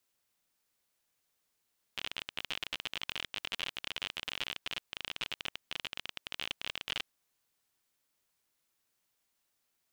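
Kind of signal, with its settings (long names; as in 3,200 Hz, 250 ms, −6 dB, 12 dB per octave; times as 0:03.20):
Geiger counter clicks 40 per second −19.5 dBFS 5.07 s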